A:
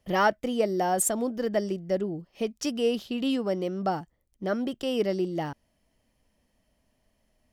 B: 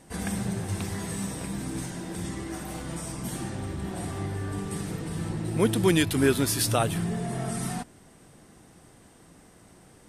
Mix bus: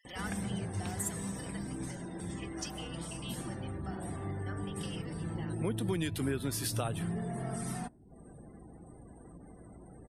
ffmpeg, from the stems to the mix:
-filter_complex "[0:a]acompressor=threshold=-28dB:ratio=6,highpass=1.5k,aecho=1:1:4:0.46,volume=-5.5dB[a];[1:a]acrossover=split=150[b][c];[c]acompressor=threshold=-26dB:ratio=5[d];[b][d]amix=inputs=2:normalize=0,aeval=exprs='val(0)+0.000794*(sin(2*PI*60*n/s)+sin(2*PI*2*60*n/s)/2+sin(2*PI*3*60*n/s)/3+sin(2*PI*4*60*n/s)/4+sin(2*PI*5*60*n/s)/5)':c=same,adelay=50,volume=-6dB[e];[a][e]amix=inputs=2:normalize=0,acompressor=mode=upward:threshold=-40dB:ratio=2.5,afftdn=nr=36:nf=-52"

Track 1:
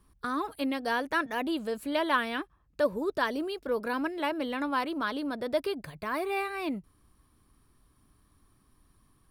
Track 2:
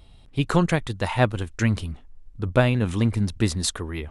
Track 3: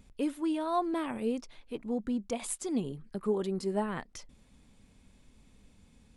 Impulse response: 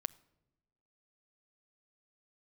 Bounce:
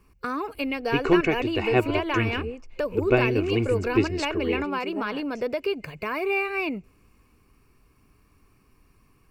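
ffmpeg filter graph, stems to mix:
-filter_complex "[0:a]acompressor=threshold=-31dB:ratio=3,volume=-2dB,asplit=2[a][b];[b]volume=-13.5dB[c];[1:a]lowpass=5.4k,equalizer=f=350:t=o:w=0.41:g=10,aecho=1:1:2.7:0.53,adelay=550,volume=-10.5dB[d];[2:a]equalizer=f=830:t=o:w=2.5:g=3.5,adelay=1200,volume=-13.5dB[e];[3:a]atrim=start_sample=2205[f];[c][f]afir=irnorm=-1:irlink=0[g];[a][d][e][g]amix=inputs=4:normalize=0,superequalizer=7b=1.78:12b=2.82:13b=0.447:16b=0.398,acontrast=23,adynamicequalizer=threshold=0.00447:dfrequency=6800:dqfactor=0.7:tfrequency=6800:tqfactor=0.7:attack=5:release=100:ratio=0.375:range=2.5:mode=cutabove:tftype=highshelf"

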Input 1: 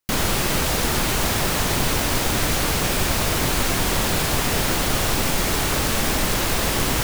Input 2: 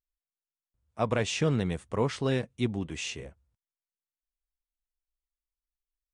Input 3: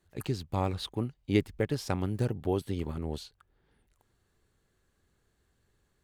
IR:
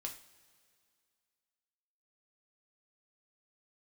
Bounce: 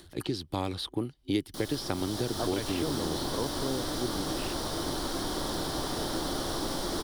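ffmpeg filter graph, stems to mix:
-filter_complex "[0:a]equalizer=f=2.4k:t=o:w=0.91:g=-13,dynaudnorm=f=100:g=17:m=11.5dB,adelay=1450,volume=-18dB,asplit=2[a][b];[b]volume=-4dB[c];[1:a]afwtdn=0.0178,adelay=1400,volume=-3dB[d];[2:a]acompressor=mode=upward:threshold=-48dB:ratio=2.5,volume=3dB,asplit=2[e][f];[f]apad=whole_len=374093[g];[a][g]sidechaincompress=threshold=-28dB:ratio=8:attack=38:release=312[h];[3:a]atrim=start_sample=2205[i];[c][i]afir=irnorm=-1:irlink=0[j];[h][d][e][j]amix=inputs=4:normalize=0,superequalizer=6b=2:13b=2.51:14b=2.24:16b=2,acrossover=split=250|2000|7000[k][l][m][n];[k]acompressor=threshold=-37dB:ratio=4[o];[l]acompressor=threshold=-29dB:ratio=4[p];[m]acompressor=threshold=-39dB:ratio=4[q];[n]acompressor=threshold=-49dB:ratio=4[r];[o][p][q][r]amix=inputs=4:normalize=0"

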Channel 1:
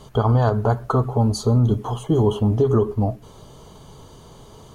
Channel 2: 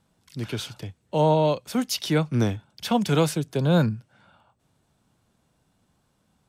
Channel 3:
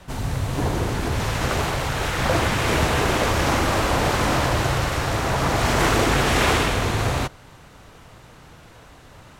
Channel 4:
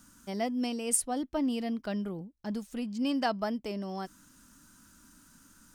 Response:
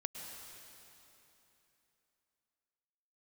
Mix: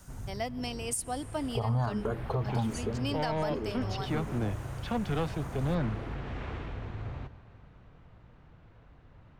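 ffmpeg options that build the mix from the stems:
-filter_complex "[0:a]asplit=2[a][b];[b]afreqshift=1.3[c];[a][c]amix=inputs=2:normalize=1,adelay=1400,volume=-5dB,afade=t=out:st=2.52:d=0.49:silence=0.298538[d];[1:a]lowpass=2.8k,aeval=exprs='(tanh(8.91*val(0)+0.3)-tanh(0.3))/8.91':c=same,adelay=2000,volume=-6dB[e];[2:a]lowpass=2.7k,lowshelf=f=240:g=11,acompressor=threshold=-33dB:ratio=1.5,volume=-19dB,asplit=2[f][g];[g]volume=-5dB[h];[3:a]highpass=f=590:p=1,volume=0.5dB,asplit=3[i][j][k];[j]volume=-17dB[l];[k]apad=whole_len=414100[m];[f][m]sidechaincompress=threshold=-39dB:ratio=8:attack=16:release=527[n];[4:a]atrim=start_sample=2205[o];[h][l]amix=inputs=2:normalize=0[p];[p][o]afir=irnorm=-1:irlink=0[q];[d][e][n][i][q]amix=inputs=5:normalize=0,alimiter=limit=-21.5dB:level=0:latency=1:release=133"

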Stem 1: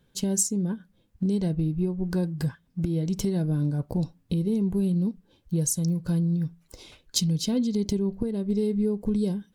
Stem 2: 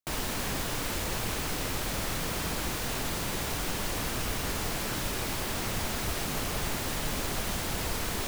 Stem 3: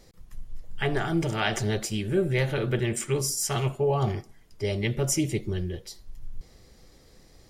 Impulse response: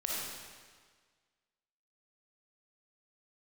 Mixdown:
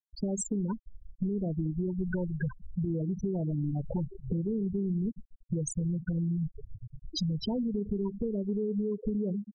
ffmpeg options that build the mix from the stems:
-filter_complex "[0:a]acrossover=split=8600[a][b];[b]acompressor=threshold=-54dB:ratio=4:attack=1:release=60[c];[a][c]amix=inputs=2:normalize=0,equalizer=f=1.1k:w=0.78:g=14.5,volume=-0.5dB,asplit=3[d][e][f];[e]volume=-21.5dB[g];[1:a]volume=-9dB,asplit=3[h][i][j];[i]volume=-9.5dB[k];[j]volume=-22dB[l];[2:a]acompressor=threshold=-34dB:ratio=12,asoftclip=type=tanh:threshold=-38dB,adelay=1950,volume=2dB,asplit=2[m][n];[n]volume=-21.5dB[o];[f]apad=whole_len=416321[p];[m][p]sidechaincompress=threshold=-26dB:ratio=12:attack=16:release=409[q];[d][q]amix=inputs=2:normalize=0,alimiter=limit=-18.5dB:level=0:latency=1:release=12,volume=0dB[r];[3:a]atrim=start_sample=2205[s];[g][k][o]amix=inputs=3:normalize=0[t];[t][s]afir=irnorm=-1:irlink=0[u];[l]aecho=0:1:69|138|207|276|345|414|483|552|621:1|0.58|0.336|0.195|0.113|0.0656|0.0381|0.0221|0.0128[v];[h][r][u][v]amix=inputs=4:normalize=0,afftfilt=real='re*gte(hypot(re,im),0.126)':imag='im*gte(hypot(re,im),0.126)':win_size=1024:overlap=0.75,acompressor=threshold=-28dB:ratio=6"

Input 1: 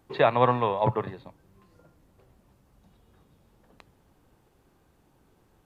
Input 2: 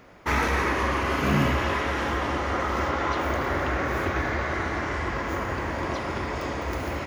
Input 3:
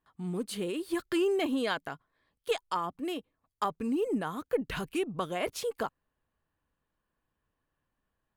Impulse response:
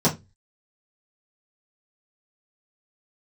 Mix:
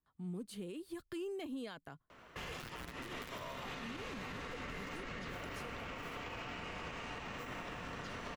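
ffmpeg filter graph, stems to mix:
-filter_complex "[0:a]lowpass=f=2.2k:p=1,aeval=exprs='0.531*(cos(1*acos(clip(val(0)/0.531,-1,1)))-cos(1*PI/2))+0.0473*(cos(2*acos(clip(val(0)/0.531,-1,1)))-cos(2*PI/2))+0.0944*(cos(3*acos(clip(val(0)/0.531,-1,1)))-cos(3*PI/2))+0.0596*(cos(7*acos(clip(val(0)/0.531,-1,1)))-cos(7*PI/2))':c=same,acrusher=bits=4:mix=0:aa=0.000001,adelay=2400,volume=2.5dB[a];[1:a]equalizer=f=62:t=o:w=0.48:g=-12.5,adelay=2100,volume=-4.5dB[b];[2:a]lowshelf=f=280:g=9,volume=-12.5dB[c];[a][b]amix=inputs=2:normalize=0,aeval=exprs='val(0)*sin(2*PI*810*n/s)':c=same,acompressor=threshold=-29dB:ratio=6,volume=0dB[d];[c][d]amix=inputs=2:normalize=0,acrossover=split=200|3000[e][f][g];[f]acompressor=threshold=-49dB:ratio=1.5[h];[e][h][g]amix=inputs=3:normalize=0,alimiter=level_in=11.5dB:limit=-24dB:level=0:latency=1:release=111,volume=-11.5dB"

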